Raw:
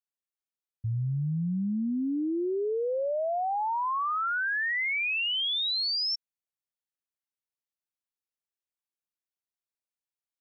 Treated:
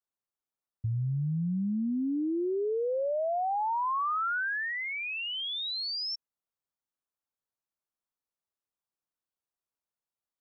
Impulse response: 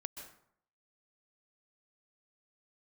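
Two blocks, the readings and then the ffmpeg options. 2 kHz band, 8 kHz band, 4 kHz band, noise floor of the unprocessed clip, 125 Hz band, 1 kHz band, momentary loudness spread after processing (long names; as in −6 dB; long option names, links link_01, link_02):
−4.0 dB, can't be measured, −5.5 dB, below −85 dBFS, −1.0 dB, −0.5 dB, 3 LU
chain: -af "highshelf=frequency=1600:width_type=q:width=1.5:gain=-6.5,acompressor=threshold=-30dB:ratio=6,volume=2dB"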